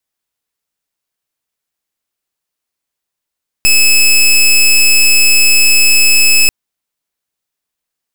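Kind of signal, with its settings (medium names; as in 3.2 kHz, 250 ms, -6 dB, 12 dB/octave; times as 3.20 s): pulse 2.6 kHz, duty 17% -7 dBFS 2.84 s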